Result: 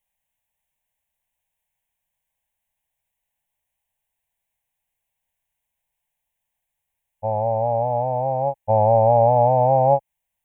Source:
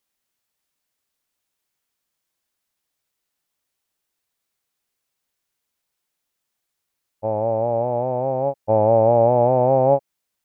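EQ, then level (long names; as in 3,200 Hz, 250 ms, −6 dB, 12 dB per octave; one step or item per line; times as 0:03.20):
low-shelf EQ 76 Hz +11.5 dB
parametric band 850 Hz +4.5 dB 0.42 octaves
phaser with its sweep stopped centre 1,300 Hz, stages 6
0.0 dB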